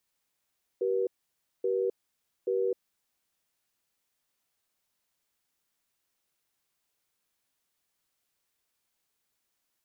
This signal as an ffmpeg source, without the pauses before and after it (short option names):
-f lavfi -i "aevalsrc='0.0398*(sin(2*PI*384*t)+sin(2*PI*481*t))*clip(min(mod(t,0.83),0.26-mod(t,0.83))/0.005,0,1)':d=2.25:s=44100"